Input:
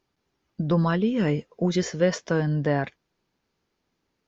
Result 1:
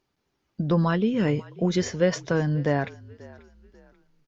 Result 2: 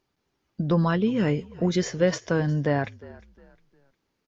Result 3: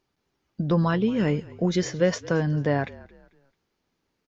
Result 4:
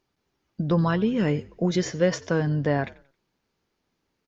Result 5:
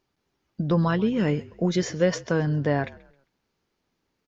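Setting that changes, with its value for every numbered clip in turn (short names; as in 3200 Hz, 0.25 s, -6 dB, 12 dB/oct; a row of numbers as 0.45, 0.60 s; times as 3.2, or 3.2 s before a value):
frequency-shifting echo, time: 538, 356, 221, 90, 133 ms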